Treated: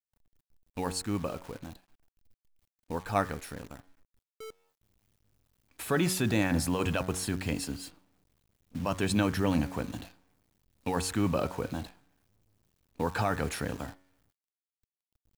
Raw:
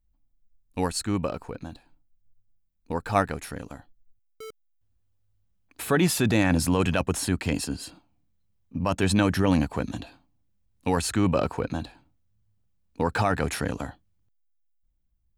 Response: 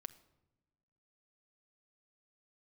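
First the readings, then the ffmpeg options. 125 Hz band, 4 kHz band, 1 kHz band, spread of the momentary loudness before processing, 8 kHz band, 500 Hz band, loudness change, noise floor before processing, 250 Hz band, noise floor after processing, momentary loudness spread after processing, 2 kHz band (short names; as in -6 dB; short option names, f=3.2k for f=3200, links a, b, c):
-5.5 dB, -5.0 dB, -5.5 dB, 18 LU, -5.0 dB, -5.5 dB, -5.5 dB, -69 dBFS, -5.5 dB, under -85 dBFS, 18 LU, -5.5 dB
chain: -af "bandreject=f=92.56:t=h:w=4,bandreject=f=185.12:t=h:w=4,bandreject=f=277.68:t=h:w=4,bandreject=f=370.24:t=h:w=4,bandreject=f=462.8:t=h:w=4,bandreject=f=555.36:t=h:w=4,bandreject=f=647.92:t=h:w=4,bandreject=f=740.48:t=h:w=4,bandreject=f=833.04:t=h:w=4,bandreject=f=925.6:t=h:w=4,bandreject=f=1.01816k:t=h:w=4,bandreject=f=1.11072k:t=h:w=4,bandreject=f=1.20328k:t=h:w=4,bandreject=f=1.29584k:t=h:w=4,bandreject=f=1.3884k:t=h:w=4,bandreject=f=1.48096k:t=h:w=4,bandreject=f=1.57352k:t=h:w=4,bandreject=f=1.66608k:t=h:w=4,bandreject=f=1.75864k:t=h:w=4,bandreject=f=1.8512k:t=h:w=4,bandreject=f=1.94376k:t=h:w=4,bandreject=f=2.03632k:t=h:w=4,bandreject=f=2.12888k:t=h:w=4,bandreject=f=2.22144k:t=h:w=4,bandreject=f=2.314k:t=h:w=4,bandreject=f=2.40656k:t=h:w=4,acrusher=bits=8:dc=4:mix=0:aa=0.000001,volume=-5dB"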